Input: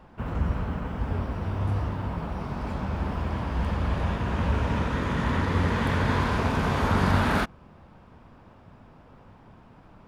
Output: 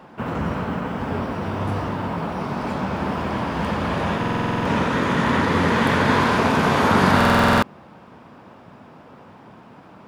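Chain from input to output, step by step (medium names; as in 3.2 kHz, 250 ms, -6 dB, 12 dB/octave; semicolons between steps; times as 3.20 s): high-pass 170 Hz 12 dB/octave; buffer glitch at 4.19/7.16 s, samples 2048, times 9; trim +9 dB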